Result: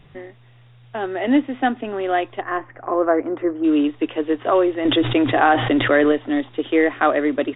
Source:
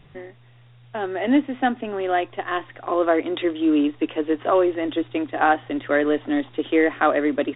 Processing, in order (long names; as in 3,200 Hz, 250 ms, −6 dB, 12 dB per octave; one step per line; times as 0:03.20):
0:02.40–0:03.63: low-pass filter 2,100 Hz → 1,500 Hz 24 dB per octave
0:04.85–0:06.12: envelope flattener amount 70%
level +1.5 dB